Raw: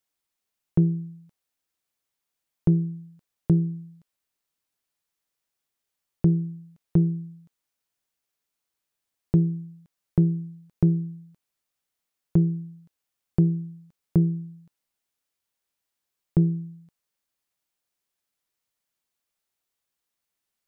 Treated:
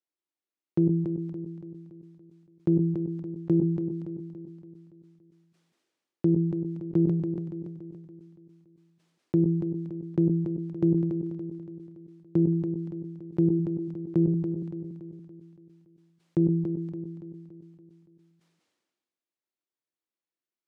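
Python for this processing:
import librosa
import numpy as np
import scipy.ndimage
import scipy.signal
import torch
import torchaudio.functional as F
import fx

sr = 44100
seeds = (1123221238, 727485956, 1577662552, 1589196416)

y = fx.tracing_dist(x, sr, depth_ms=0.1)
y = fx.peak_eq(y, sr, hz=340.0, db=13.0, octaves=0.77)
y = fx.level_steps(y, sr, step_db=19)
y = scipy.signal.sosfilt(scipy.signal.butter(2, 160.0, 'highpass', fs=sr, output='sos'), y)
y = fx.air_absorb(y, sr, metres=80.0)
y = fx.notch(y, sr, hz=410.0, q=12.0)
y = fx.echo_feedback(y, sr, ms=284, feedback_pct=51, wet_db=-8)
y = fx.sustainer(y, sr, db_per_s=39.0)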